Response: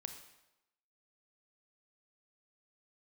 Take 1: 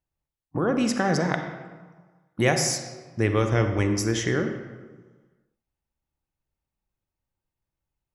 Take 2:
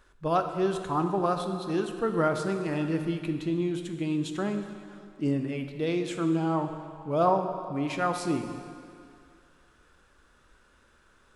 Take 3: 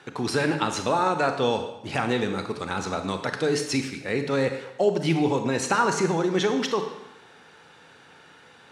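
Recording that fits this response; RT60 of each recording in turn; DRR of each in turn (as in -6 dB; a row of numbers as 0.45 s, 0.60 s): 3; 1.4 s, 2.3 s, 0.95 s; 6.0 dB, 6.0 dB, 6.5 dB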